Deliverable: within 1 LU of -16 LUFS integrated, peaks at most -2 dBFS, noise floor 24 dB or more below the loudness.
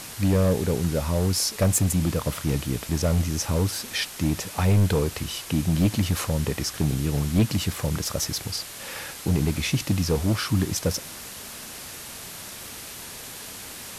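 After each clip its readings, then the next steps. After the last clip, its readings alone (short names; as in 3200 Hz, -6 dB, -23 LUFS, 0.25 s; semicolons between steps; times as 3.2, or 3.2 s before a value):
clipped 1.1%; flat tops at -14.5 dBFS; noise floor -39 dBFS; noise floor target -49 dBFS; loudness -25.0 LUFS; peak -14.5 dBFS; loudness target -16.0 LUFS
-> clip repair -14.5 dBFS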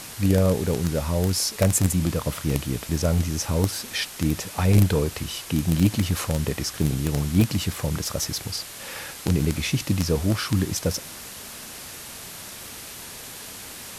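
clipped 0.0%; noise floor -39 dBFS; noise floor target -48 dBFS
-> denoiser 9 dB, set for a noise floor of -39 dBFS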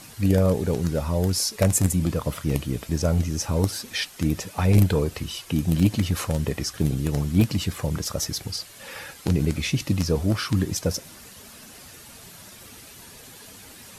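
noise floor -46 dBFS; noise floor target -49 dBFS
-> denoiser 6 dB, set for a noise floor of -46 dBFS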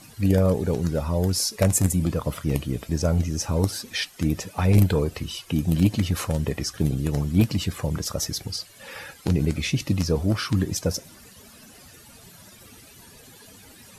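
noise floor -49 dBFS; loudness -24.5 LUFS; peak -5.5 dBFS; loudness target -16.0 LUFS
-> gain +8.5 dB; limiter -2 dBFS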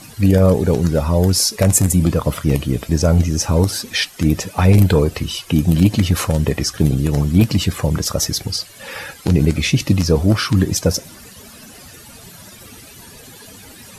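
loudness -16.5 LUFS; peak -2.0 dBFS; noise floor -41 dBFS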